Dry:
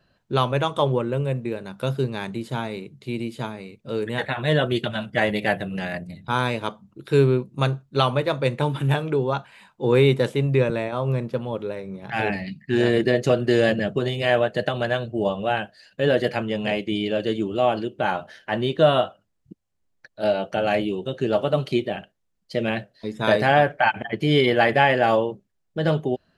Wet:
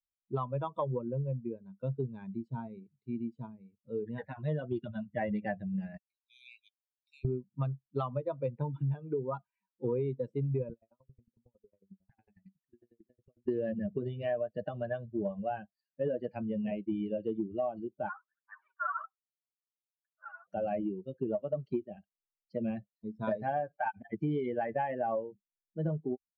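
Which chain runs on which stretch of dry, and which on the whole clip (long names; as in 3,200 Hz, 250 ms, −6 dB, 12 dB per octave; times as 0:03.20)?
0:05.97–0:07.25: Chebyshev high-pass filter 2,200 Hz, order 8 + spectral tilt +1.5 dB per octave
0:10.73–0:13.48: downward compressor 12 to 1, threshold −28 dBFS + tremolo with a ramp in dB decaying 11 Hz, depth 29 dB
0:18.08–0:20.46: spectral envelope flattened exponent 0.6 + flat-topped band-pass 1,300 Hz, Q 1.9 + phase shifter 1.3 Hz, delay 3.1 ms, feedback 64%
whole clip: spectral dynamics exaggerated over time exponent 2; low-pass filter 1,000 Hz 12 dB per octave; downward compressor 12 to 1, threshold −30 dBFS; level +1 dB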